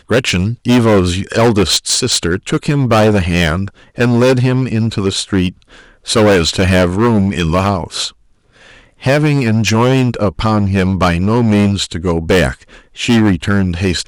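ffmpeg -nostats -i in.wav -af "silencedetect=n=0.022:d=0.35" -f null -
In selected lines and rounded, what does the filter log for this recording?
silence_start: 8.11
silence_end: 8.61 | silence_duration: 0.50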